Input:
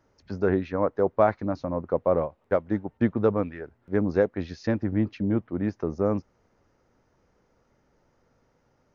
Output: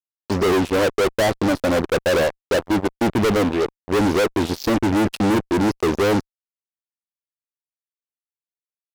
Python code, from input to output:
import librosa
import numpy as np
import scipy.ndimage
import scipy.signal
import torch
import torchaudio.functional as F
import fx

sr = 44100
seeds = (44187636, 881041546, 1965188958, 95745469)

y = fx.curve_eq(x, sr, hz=(170.0, 350.0, 980.0, 1800.0, 2800.0), db=(0, 9, 4, -23, 6))
y = fx.fuzz(y, sr, gain_db=35.0, gate_db=-39.0)
y = F.gain(torch.from_numpy(y), -2.5).numpy()